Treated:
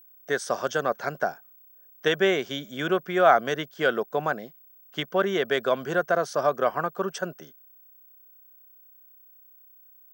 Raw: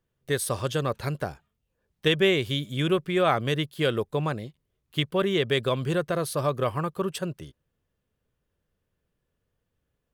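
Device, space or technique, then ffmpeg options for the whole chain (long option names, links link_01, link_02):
old television with a line whistle: -af "highpass=frequency=200:width=0.5412,highpass=frequency=200:width=1.3066,equalizer=frequency=310:width_type=q:width=4:gain=-4,equalizer=frequency=700:width_type=q:width=4:gain=10,equalizer=frequency=1500:width_type=q:width=4:gain=10,equalizer=frequency=2600:width_type=q:width=4:gain=-6,equalizer=frequency=4000:width_type=q:width=4:gain=-9,equalizer=frequency=5900:width_type=q:width=4:gain=9,lowpass=frequency=6800:width=0.5412,lowpass=frequency=6800:width=1.3066,aeval=exprs='val(0)+0.00282*sin(2*PI*15734*n/s)':channel_layout=same"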